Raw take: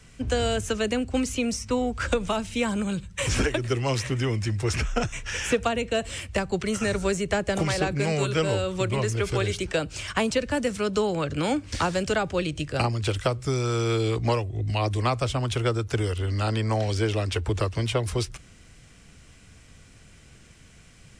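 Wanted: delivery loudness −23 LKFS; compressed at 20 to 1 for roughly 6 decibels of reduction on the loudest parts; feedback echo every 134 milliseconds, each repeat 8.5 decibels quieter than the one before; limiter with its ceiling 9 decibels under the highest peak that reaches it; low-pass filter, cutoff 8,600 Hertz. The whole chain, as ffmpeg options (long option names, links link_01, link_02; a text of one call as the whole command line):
ffmpeg -i in.wav -af "lowpass=8600,acompressor=threshold=-25dB:ratio=20,alimiter=limit=-24dB:level=0:latency=1,aecho=1:1:134|268|402|536:0.376|0.143|0.0543|0.0206,volume=9.5dB" out.wav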